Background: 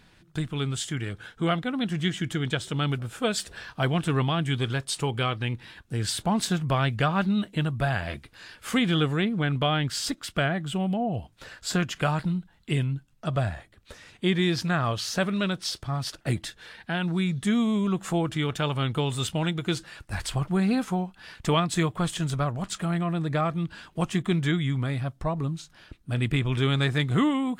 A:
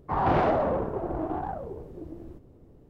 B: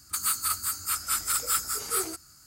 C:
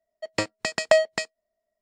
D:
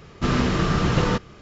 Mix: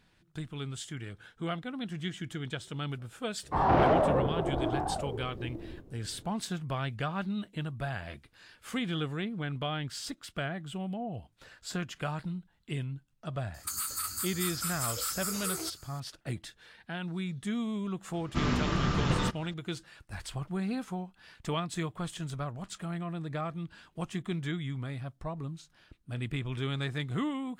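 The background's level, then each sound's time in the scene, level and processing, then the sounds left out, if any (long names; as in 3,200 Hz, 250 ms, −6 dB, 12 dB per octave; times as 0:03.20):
background −9.5 dB
0:03.43: mix in A −0.5 dB
0:13.54: mix in B −1 dB + downward compressor, threshold −29 dBFS
0:18.13: mix in D −7.5 dB + parametric band 460 Hz −5.5 dB 0.42 octaves
not used: C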